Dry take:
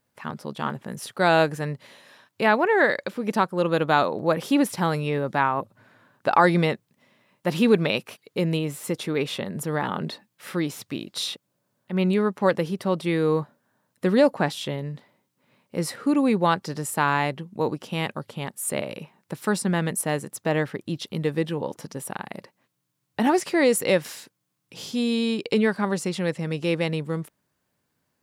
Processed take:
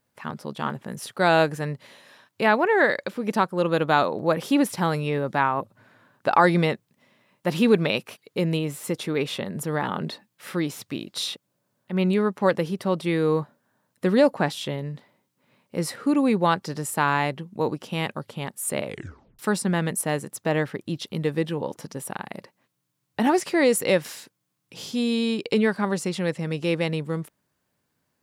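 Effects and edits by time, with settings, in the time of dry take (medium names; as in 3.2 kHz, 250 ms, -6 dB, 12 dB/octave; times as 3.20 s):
18.85 s: tape stop 0.54 s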